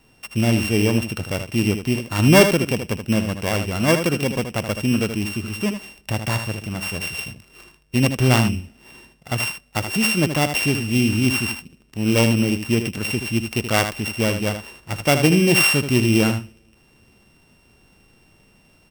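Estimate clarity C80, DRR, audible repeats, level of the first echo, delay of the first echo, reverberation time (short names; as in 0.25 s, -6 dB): none, none, 1, -8.5 dB, 78 ms, none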